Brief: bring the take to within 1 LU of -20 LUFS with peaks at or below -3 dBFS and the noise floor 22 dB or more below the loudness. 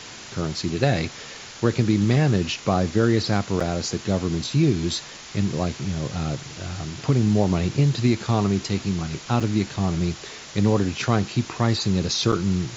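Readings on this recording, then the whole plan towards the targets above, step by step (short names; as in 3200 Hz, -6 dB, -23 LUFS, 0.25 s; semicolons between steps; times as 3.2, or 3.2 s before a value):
dropouts 3; longest dropout 5.1 ms; noise floor -40 dBFS; noise floor target -46 dBFS; loudness -23.5 LUFS; peak -5.5 dBFS; loudness target -20.0 LUFS
-> interpolate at 3.6/9.4/12.32, 5.1 ms; noise print and reduce 6 dB; gain +3.5 dB; limiter -3 dBFS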